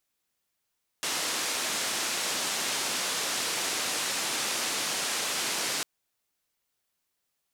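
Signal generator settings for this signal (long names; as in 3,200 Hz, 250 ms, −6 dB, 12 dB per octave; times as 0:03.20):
band-limited noise 210–8,000 Hz, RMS −30.5 dBFS 4.80 s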